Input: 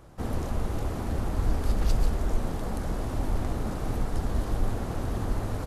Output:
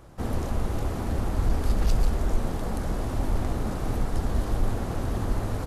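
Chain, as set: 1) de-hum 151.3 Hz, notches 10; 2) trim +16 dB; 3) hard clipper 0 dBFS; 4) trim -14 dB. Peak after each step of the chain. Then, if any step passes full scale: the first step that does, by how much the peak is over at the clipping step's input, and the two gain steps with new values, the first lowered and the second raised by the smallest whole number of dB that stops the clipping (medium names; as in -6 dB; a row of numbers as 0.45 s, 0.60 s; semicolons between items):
-12.5 dBFS, +3.5 dBFS, 0.0 dBFS, -14.0 dBFS; step 2, 3.5 dB; step 2 +12 dB, step 4 -10 dB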